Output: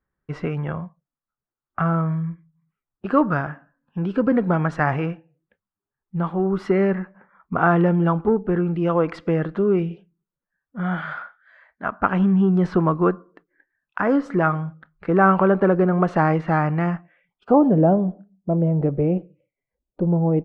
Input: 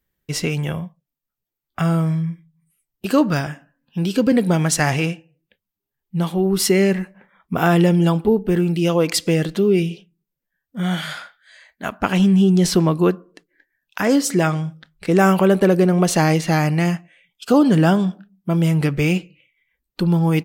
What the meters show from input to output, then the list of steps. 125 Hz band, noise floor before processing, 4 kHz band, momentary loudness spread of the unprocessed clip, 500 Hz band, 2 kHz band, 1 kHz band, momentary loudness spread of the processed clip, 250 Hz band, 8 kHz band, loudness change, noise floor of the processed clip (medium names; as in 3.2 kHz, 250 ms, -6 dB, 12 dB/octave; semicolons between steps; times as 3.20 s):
-3.5 dB, -84 dBFS, under -20 dB, 15 LU, -2.0 dB, -2.5 dB, +1.5 dB, 15 LU, -3.0 dB, under -30 dB, -2.5 dB, under -85 dBFS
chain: Chebyshev shaper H 8 -36 dB, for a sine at -2 dBFS; low-pass sweep 1.3 kHz -> 610 Hz, 17.20–17.82 s; trim -3.5 dB